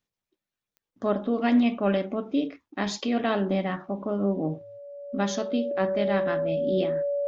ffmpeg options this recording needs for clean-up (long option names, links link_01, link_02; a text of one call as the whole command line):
ffmpeg -i in.wav -af "adeclick=threshold=4,bandreject=frequency=570:width=30" out.wav